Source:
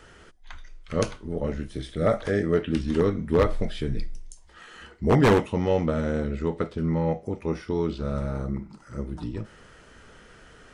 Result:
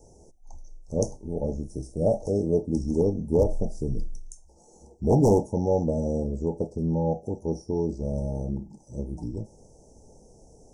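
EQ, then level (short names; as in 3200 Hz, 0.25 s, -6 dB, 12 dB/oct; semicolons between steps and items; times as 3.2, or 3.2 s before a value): Chebyshev band-stop 860–5700 Hz, order 5; bell 4300 Hz +9 dB 0.87 oct; 0.0 dB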